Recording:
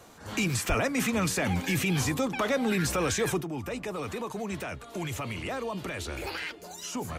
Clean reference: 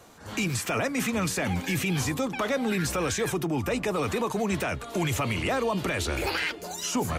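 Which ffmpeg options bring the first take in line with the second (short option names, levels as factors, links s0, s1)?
-filter_complex "[0:a]asplit=3[s0][s1][s2];[s0]afade=t=out:st=0.68:d=0.02[s3];[s1]highpass=f=140:w=0.5412,highpass=f=140:w=1.3066,afade=t=in:st=0.68:d=0.02,afade=t=out:st=0.8:d=0.02[s4];[s2]afade=t=in:st=0.8:d=0.02[s5];[s3][s4][s5]amix=inputs=3:normalize=0,asetnsamples=n=441:p=0,asendcmd='3.41 volume volume 7dB',volume=1"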